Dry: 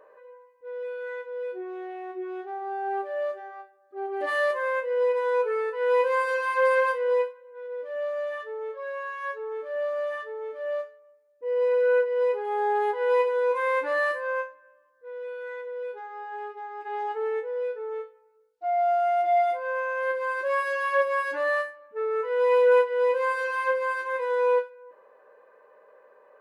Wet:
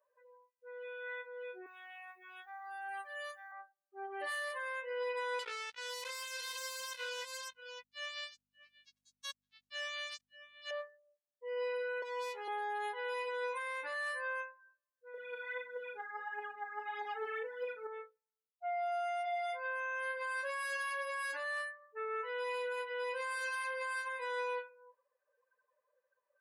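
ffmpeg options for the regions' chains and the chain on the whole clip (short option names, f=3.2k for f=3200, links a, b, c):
-filter_complex "[0:a]asettb=1/sr,asplit=3[a][b][c];[a]atrim=end=1.664[d];[b]atrim=start=1.66:end=3.52,asetpts=PTS-STARTPTS,afade=t=in:d=0.004:c=qsin,afade=t=out:st=1.856:d=0.004:c=qsin,highpass=950,aemphasis=mode=production:type=50fm[e];[c]atrim=start=3.516[f];[d][e]acrossfade=d=0.004:c1=hsin:c2=qsin[g];[g][f]acrossfade=d=0.004:c1=qsin:c2=hsin,asettb=1/sr,asplit=3[h][i][j];[h]atrim=end=5.394[k];[i]atrim=start=5.39:end=10.71,asetpts=PTS-STARTPTS,afade=t=in:d=0.004:c=qsin,afade=t=out:st=5.316:d=0.004:c=qsin,acrusher=bits=3:mix=0:aa=0.5,aeval=exprs='val(0)+0.01*(sin(2*PI*50*n/s)+sin(2*PI*2*50*n/s)/2+sin(2*PI*3*50*n/s)/3+sin(2*PI*4*50*n/s)/4+sin(2*PI*5*50*n/s)/5)':c=same,aecho=1:1:572:0.119,atrim=end_sample=234612[l];[j]atrim=start=10.706[m];[k][l]acrossfade=d=0.004:c1=hsin:c2=qsin[n];[n][m]acrossfade=d=0.004:c1=qsin:c2=hsin,asettb=1/sr,asplit=3[o][p][q];[o]atrim=end=12.024[r];[p]atrim=start=12.02:end=12.48,asetpts=PTS-STARTPTS,afade=t=in:d=0.004:c=qsin,afade=t=out:st=0.456:d=0.004:c=qsin,highpass=f=320:w=0.5412,highpass=f=320:w=1.3066,aeval=exprs='clip(val(0),-1,0.02)':c=same[s];[q]atrim=start=12.476[t];[r][s]acrossfade=d=0.004:c1=hsin:c2=qsin[u];[u][t]acrossfade=d=0.004:c1=qsin:c2=hsin,asettb=1/sr,asplit=3[v][w][x];[v]atrim=end=15.144[y];[w]atrim=start=15.14:end=17.87,asetpts=PTS-STARTPTS,afade=t=in:d=0.004:c=qsin,afade=t=out:st=2.726:d=0.004:c=qsin,aphaser=in_gain=1:out_gain=1:delay=3.2:decay=0.62:speed=1.6:type=triangular,aeval=exprs='val(0)+0.00891*(sin(2*PI*60*n/s)+sin(2*PI*2*60*n/s)/2+sin(2*PI*3*60*n/s)/3+sin(2*PI*4*60*n/s)/4+sin(2*PI*5*60*n/s)/5)':c=same,asplit=2[z][aa];[aa]adelay=38,volume=-7.5dB[ab];[z][ab]amix=inputs=2:normalize=0,atrim=end_sample=120393[ac];[x]atrim=start=17.866[ad];[y][ac]acrossfade=d=0.004:c1=hsin:c2=qsin[ae];[ae][ad]acrossfade=d=0.004:c1=qsin:c2=hsin,aderivative,afftdn=nr=25:nf=-60,alimiter=level_in=17.5dB:limit=-24dB:level=0:latency=1:release=99,volume=-17.5dB,volume=10dB"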